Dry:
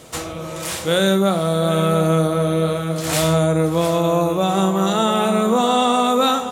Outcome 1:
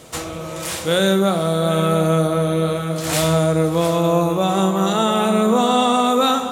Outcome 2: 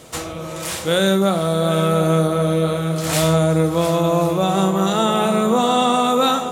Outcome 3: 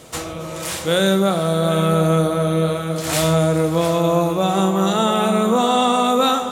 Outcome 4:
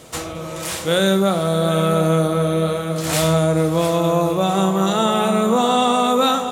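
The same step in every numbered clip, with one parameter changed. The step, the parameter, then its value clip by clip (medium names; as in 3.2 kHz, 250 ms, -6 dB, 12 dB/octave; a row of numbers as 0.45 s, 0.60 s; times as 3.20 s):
multi-head delay, time: 65 ms, 362 ms, 136 ms, 220 ms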